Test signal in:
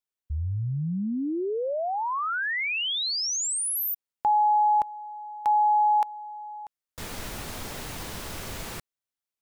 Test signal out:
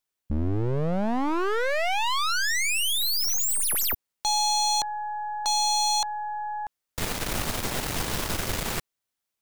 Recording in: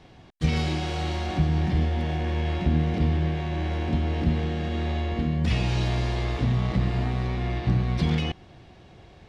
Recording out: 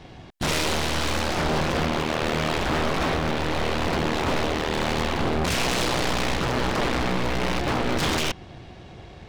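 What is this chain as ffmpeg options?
ffmpeg -i in.wav -af "aeval=exprs='0.251*(cos(1*acos(clip(val(0)/0.251,-1,1)))-cos(1*PI/2))+0.00316*(cos(3*acos(clip(val(0)/0.251,-1,1)))-cos(3*PI/2))+0.00355*(cos(4*acos(clip(val(0)/0.251,-1,1)))-cos(4*PI/2))+0.0126*(cos(5*acos(clip(val(0)/0.251,-1,1)))-cos(5*PI/2))+0.0891*(cos(6*acos(clip(val(0)/0.251,-1,1)))-cos(6*PI/2))':channel_layout=same,aeval=exprs='0.0794*(abs(mod(val(0)/0.0794+3,4)-2)-1)':channel_layout=same,volume=5dB" out.wav

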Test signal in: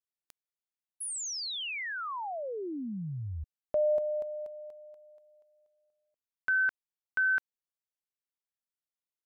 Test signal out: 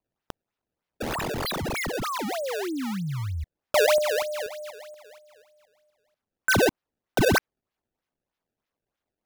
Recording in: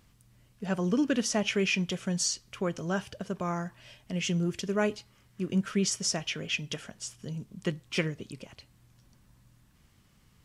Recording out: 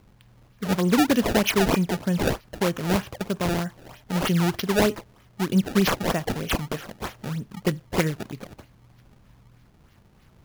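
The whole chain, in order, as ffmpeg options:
ffmpeg -i in.wav -af "acrusher=samples=24:mix=1:aa=0.000001:lfo=1:lforange=38.4:lforate=3.2,equalizer=frequency=8200:width_type=o:width=0.27:gain=-3,volume=7dB" out.wav

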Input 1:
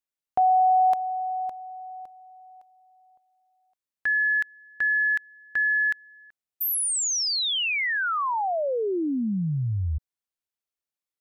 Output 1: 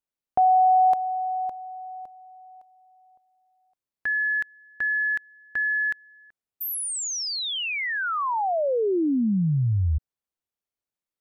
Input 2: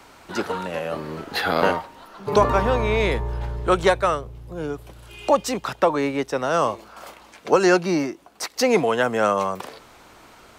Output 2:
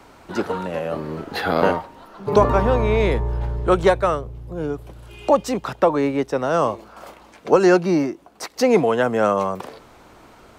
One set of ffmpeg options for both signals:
ffmpeg -i in.wav -af "tiltshelf=frequency=1100:gain=4" out.wav

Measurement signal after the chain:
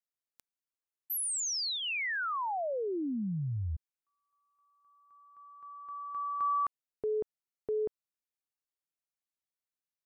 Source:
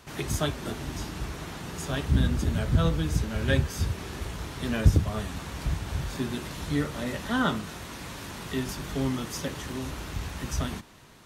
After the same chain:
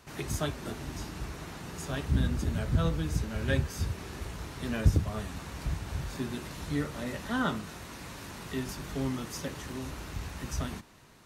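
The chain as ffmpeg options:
ffmpeg -i in.wav -af "equalizer=frequency=3300:width_type=o:width=0.23:gain=-3.5,volume=-4dB" out.wav

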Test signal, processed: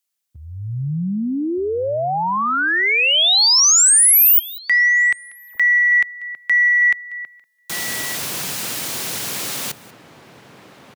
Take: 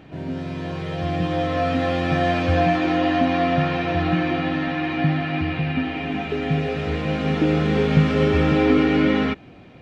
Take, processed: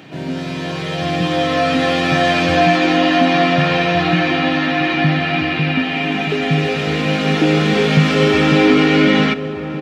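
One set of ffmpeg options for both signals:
ffmpeg -i in.wav -filter_complex "[0:a]highpass=frequency=120:width=0.5412,highpass=frequency=120:width=1.3066,highshelf=frequency=2400:gain=11,asplit=2[link_01][link_02];[link_02]aecho=0:1:190:0.0841[link_03];[link_01][link_03]amix=inputs=2:normalize=0,acontrast=33,asplit=2[link_04][link_05];[link_05]adelay=1224,volume=-10dB,highshelf=frequency=4000:gain=-27.6[link_06];[link_04][link_06]amix=inputs=2:normalize=0" out.wav

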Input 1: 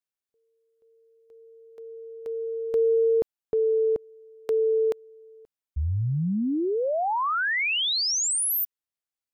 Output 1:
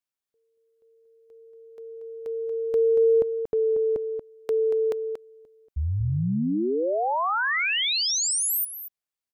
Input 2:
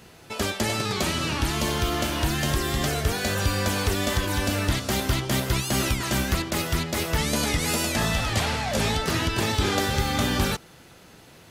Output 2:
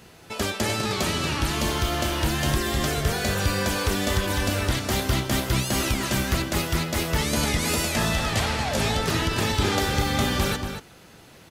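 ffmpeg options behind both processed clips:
ffmpeg -i in.wav -filter_complex "[0:a]asplit=2[link_01][link_02];[link_02]adelay=233.2,volume=-7dB,highshelf=frequency=4000:gain=-5.25[link_03];[link_01][link_03]amix=inputs=2:normalize=0" out.wav

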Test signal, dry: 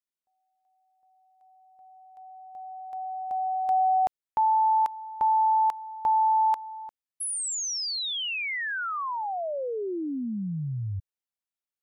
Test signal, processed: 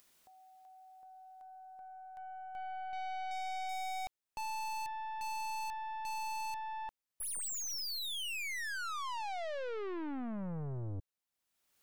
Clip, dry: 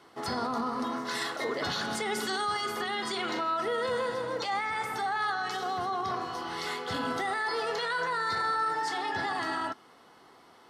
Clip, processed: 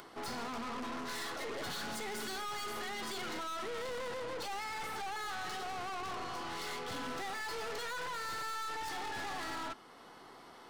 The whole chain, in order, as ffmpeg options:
ffmpeg -i in.wav -af "aeval=exprs='(tanh(112*val(0)+0.5)-tanh(0.5))/112':channel_layout=same,acompressor=mode=upward:threshold=-48dB:ratio=2.5:attack=4:release=621:knee=2.83:detection=peak,volume=2dB" out.wav

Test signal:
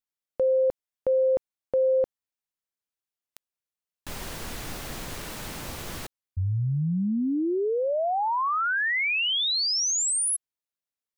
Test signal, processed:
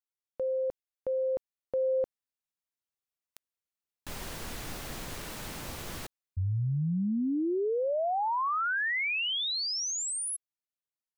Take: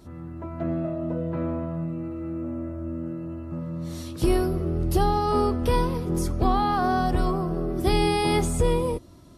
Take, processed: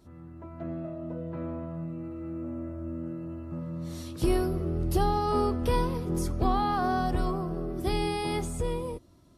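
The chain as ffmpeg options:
ffmpeg -i in.wav -af "dynaudnorm=framelen=190:gausssize=21:maxgain=5dB,volume=-8.5dB" out.wav

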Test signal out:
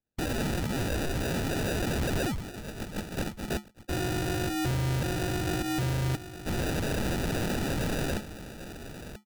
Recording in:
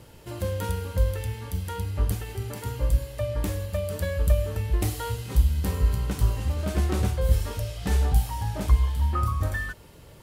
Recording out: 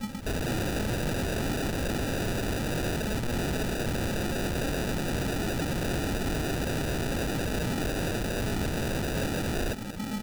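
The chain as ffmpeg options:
ffmpeg -i in.wav -filter_complex "[0:a]afftdn=noise_reduction=15:noise_floor=-36,asplit=2[link_01][link_02];[link_02]highpass=frequency=720:poles=1,volume=34dB,asoftclip=type=tanh:threshold=-8dB[link_03];[link_01][link_03]amix=inputs=2:normalize=0,lowpass=frequency=1100:poles=1,volume=-6dB,acompressor=threshold=-25dB:ratio=6,equalizer=frequency=140:width_type=o:width=0.25:gain=12,lowpass=frequency=2100:width_type=q:width=0.5098,lowpass=frequency=2100:width_type=q:width=0.6013,lowpass=frequency=2100:width_type=q:width=0.9,lowpass=frequency=2100:width_type=q:width=2.563,afreqshift=-2500,aresample=16000,aeval=exprs='(mod(22.4*val(0)+1,2)-1)/22.4':channel_layout=same,aresample=44100,aecho=1:1:985:0.188,acrusher=samples=41:mix=1:aa=0.000001,equalizer=frequency=560:width_type=o:width=2.6:gain=-5,aeval=exprs='0.0794*(cos(1*acos(clip(val(0)/0.0794,-1,1)))-cos(1*PI/2))+0.0141*(cos(5*acos(clip(val(0)/0.0794,-1,1)))-cos(5*PI/2))+0.01*(cos(6*acos(clip(val(0)/0.0794,-1,1)))-cos(6*PI/2))+0.00794*(cos(8*acos(clip(val(0)/0.0794,-1,1)))-cos(8*PI/2))':channel_layout=same,volume=1.5dB" out.wav

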